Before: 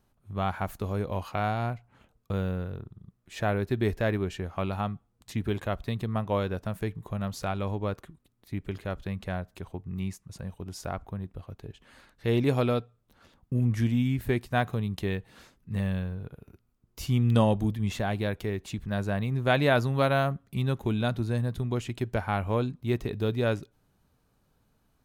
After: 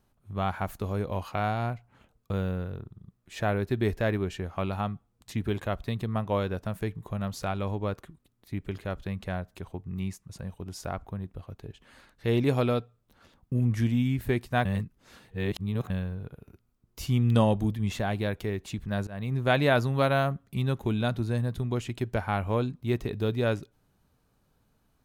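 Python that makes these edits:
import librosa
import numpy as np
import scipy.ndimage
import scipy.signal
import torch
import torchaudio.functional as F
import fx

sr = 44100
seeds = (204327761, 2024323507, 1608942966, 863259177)

y = fx.edit(x, sr, fx.reverse_span(start_s=14.65, length_s=1.25),
    fx.fade_in_from(start_s=19.07, length_s=0.25, floor_db=-24.0), tone=tone)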